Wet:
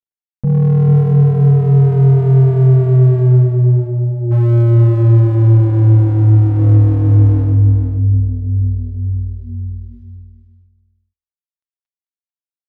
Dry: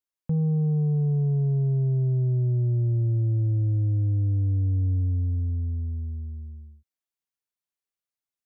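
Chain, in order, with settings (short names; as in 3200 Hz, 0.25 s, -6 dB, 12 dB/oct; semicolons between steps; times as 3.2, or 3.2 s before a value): median filter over 41 samples; notches 60/120/180/240/300/360 Hz; reverb removal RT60 1.9 s; low shelf 280 Hz +5.5 dB; AGC gain up to 13.5 dB; granular stretch 1.5×, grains 50 ms; overloaded stage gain 14.5 dB; feedback echo 0.443 s, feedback 15%, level -8 dB; decimation joined by straight lines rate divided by 4×; gain +6 dB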